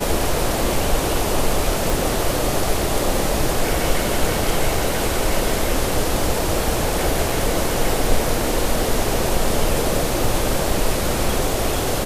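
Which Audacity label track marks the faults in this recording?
1.900000	1.900000	pop
7.300000	7.300000	dropout 3.1 ms

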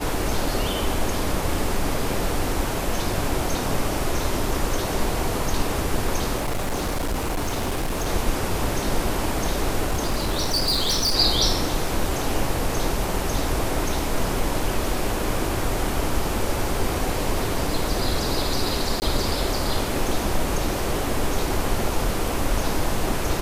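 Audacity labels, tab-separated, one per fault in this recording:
6.370000	8.080000	clipped -21 dBFS
9.800000	11.160000	clipped -18 dBFS
19.000000	19.020000	dropout 19 ms

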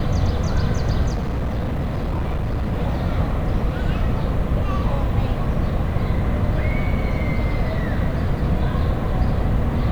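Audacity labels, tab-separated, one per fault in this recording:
1.120000	2.740000	clipped -19 dBFS

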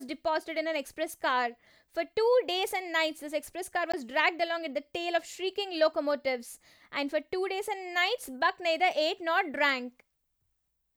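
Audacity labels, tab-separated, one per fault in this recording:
3.920000	3.940000	dropout 15 ms

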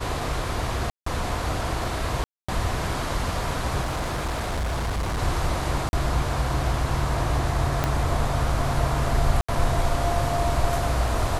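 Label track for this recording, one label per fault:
0.900000	1.060000	dropout 164 ms
2.240000	2.480000	dropout 245 ms
3.820000	5.200000	clipped -23 dBFS
5.890000	5.930000	dropout 41 ms
7.840000	7.840000	pop -8 dBFS
9.410000	9.480000	dropout 75 ms

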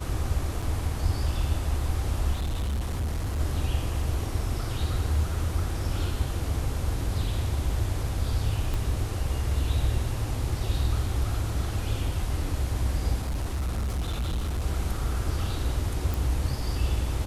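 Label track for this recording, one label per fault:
0.620000	0.630000	dropout 5.4 ms
2.330000	3.400000	clipped -25 dBFS
8.740000	8.740000	pop -18 dBFS
13.180000	14.660000	clipped -25 dBFS
16.140000	16.140000	pop

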